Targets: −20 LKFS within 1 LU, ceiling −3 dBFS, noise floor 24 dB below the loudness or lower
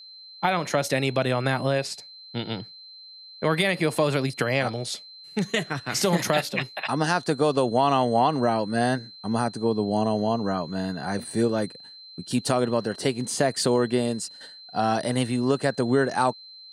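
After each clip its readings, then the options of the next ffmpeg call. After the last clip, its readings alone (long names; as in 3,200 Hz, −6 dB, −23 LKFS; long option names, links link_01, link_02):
interfering tone 4,100 Hz; level of the tone −43 dBFS; integrated loudness −25.0 LKFS; sample peak −7.0 dBFS; target loudness −20.0 LKFS
→ -af "bandreject=frequency=4100:width=30"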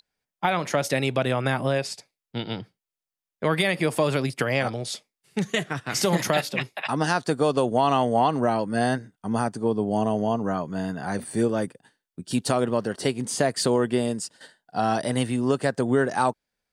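interfering tone none found; integrated loudness −25.0 LKFS; sample peak −7.0 dBFS; target loudness −20.0 LKFS
→ -af "volume=5dB,alimiter=limit=-3dB:level=0:latency=1"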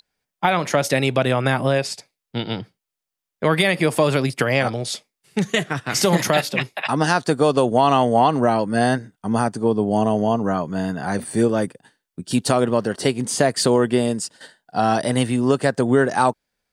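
integrated loudness −20.0 LKFS; sample peak −3.0 dBFS; background noise floor −85 dBFS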